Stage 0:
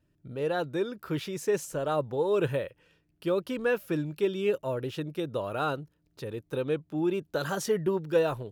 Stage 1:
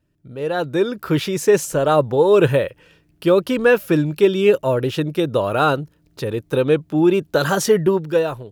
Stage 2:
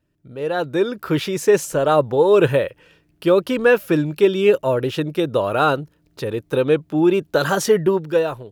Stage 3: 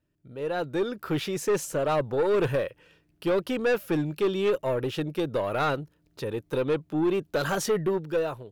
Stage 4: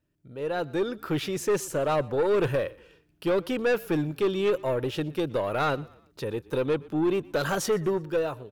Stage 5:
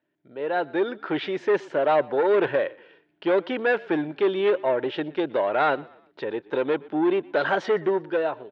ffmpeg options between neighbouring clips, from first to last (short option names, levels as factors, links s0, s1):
-af "dynaudnorm=f=100:g=13:m=3.16,volume=1.41"
-af "bass=f=250:g=-3,treble=f=4000:g=-2"
-af "aeval=exprs='(tanh(4.47*val(0)+0.15)-tanh(0.15))/4.47':c=same,volume=0.501"
-filter_complex "[0:a]asplit=4[s0][s1][s2][s3];[s1]adelay=120,afreqshift=-31,volume=0.0708[s4];[s2]adelay=240,afreqshift=-62,volume=0.0305[s5];[s3]adelay=360,afreqshift=-93,volume=0.013[s6];[s0][s4][s5][s6]amix=inputs=4:normalize=0"
-af "highpass=410,equalizer=f=490:t=q:w=4:g=-6,equalizer=f=1200:t=q:w=4:g=-9,equalizer=f=2600:t=q:w=4:g=-7,lowpass=f=3000:w=0.5412,lowpass=f=3000:w=1.3066,volume=2.66"